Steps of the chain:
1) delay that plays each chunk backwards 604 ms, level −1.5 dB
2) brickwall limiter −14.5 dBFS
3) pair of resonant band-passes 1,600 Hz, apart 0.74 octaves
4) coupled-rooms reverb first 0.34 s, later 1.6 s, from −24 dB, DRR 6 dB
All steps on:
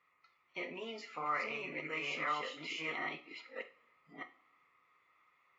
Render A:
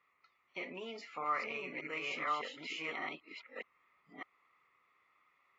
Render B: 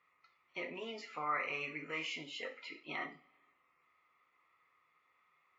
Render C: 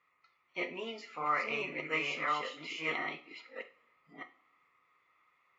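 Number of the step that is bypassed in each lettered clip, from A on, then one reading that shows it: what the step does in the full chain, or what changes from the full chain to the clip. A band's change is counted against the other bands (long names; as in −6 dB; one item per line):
4, 125 Hz band −2.5 dB
1, change in momentary loudness spread −5 LU
2, average gain reduction 2.0 dB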